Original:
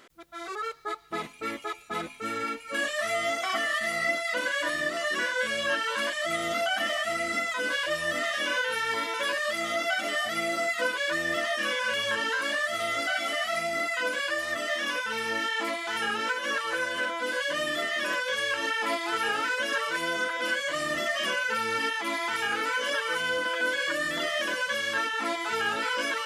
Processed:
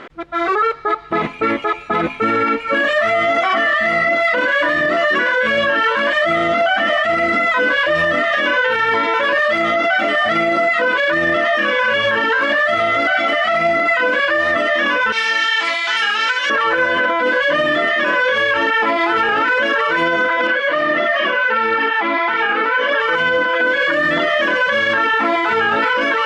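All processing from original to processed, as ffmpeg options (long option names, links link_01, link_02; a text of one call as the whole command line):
ffmpeg -i in.wav -filter_complex "[0:a]asettb=1/sr,asplit=3[link_01][link_02][link_03];[link_01]atrim=end=15.124[link_04];[link_02]atrim=start=15.12:end=16.5,asetpts=PTS-STARTPTS,afade=type=in:duration=0.004:curve=qsin,afade=type=out:start_time=1.376:duration=0.004:curve=qsin,bandpass=frequency=5100:width_type=q:width=0.65,equalizer=frequency=7500:width=0.52:gain=9[link_05];[link_03]atrim=start=16.496[link_06];[link_04][link_05]acrossfade=duration=0.004:curve1=hsin:curve2=qsin[link_07];[link_07][link_06]acrossfade=duration=0.004:curve1=qsin:curve2=hsin,asettb=1/sr,asplit=3[link_08][link_09][link_10];[link_08]atrim=end=20.474[link_11];[link_09]atrim=start=20.47:end=23,asetpts=PTS-STARTPTS,afade=type=in:duration=0.004:curve=qsin,afade=type=out:start_time=2.526:duration=0.004:curve=qsin,highpass=230,lowpass=4300,flanger=delay=0.1:depth=5:regen=77:speed=1.6:shape=triangular[link_12];[link_10]atrim=start=22.996[link_13];[link_11][link_12]acrossfade=duration=0.004:curve1=hsin:curve2=qsin[link_14];[link_14][link_13]acrossfade=duration=0.004:curve1=qsin:curve2=hsin,lowpass=2200,alimiter=level_in=28.5dB:limit=-1dB:release=50:level=0:latency=1,volume=-7.5dB" out.wav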